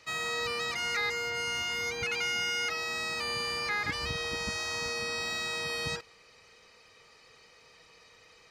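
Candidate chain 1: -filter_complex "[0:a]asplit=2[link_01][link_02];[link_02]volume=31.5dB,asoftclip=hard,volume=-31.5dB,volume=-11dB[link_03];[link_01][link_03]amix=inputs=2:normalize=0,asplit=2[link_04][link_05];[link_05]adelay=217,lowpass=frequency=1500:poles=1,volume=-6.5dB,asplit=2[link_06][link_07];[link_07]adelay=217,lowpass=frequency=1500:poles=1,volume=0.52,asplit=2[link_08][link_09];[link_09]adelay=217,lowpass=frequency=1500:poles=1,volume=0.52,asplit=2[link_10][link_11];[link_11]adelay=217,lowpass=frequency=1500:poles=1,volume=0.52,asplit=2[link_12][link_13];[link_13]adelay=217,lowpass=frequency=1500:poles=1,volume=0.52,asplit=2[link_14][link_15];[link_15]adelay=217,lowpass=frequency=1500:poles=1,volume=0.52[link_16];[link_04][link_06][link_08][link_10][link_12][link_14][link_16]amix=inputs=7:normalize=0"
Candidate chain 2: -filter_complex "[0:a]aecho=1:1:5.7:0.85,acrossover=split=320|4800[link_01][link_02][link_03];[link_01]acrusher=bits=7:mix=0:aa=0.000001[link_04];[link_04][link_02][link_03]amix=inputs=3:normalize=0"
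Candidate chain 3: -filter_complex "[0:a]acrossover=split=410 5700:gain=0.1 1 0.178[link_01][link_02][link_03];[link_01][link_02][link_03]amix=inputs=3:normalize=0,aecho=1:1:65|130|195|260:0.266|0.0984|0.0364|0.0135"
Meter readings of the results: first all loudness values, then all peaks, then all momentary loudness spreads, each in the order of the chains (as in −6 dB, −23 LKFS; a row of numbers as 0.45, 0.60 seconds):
−29.0, −29.0, −32.0 LKFS; −19.5, −17.0, −20.5 dBFS; 3, 4, 4 LU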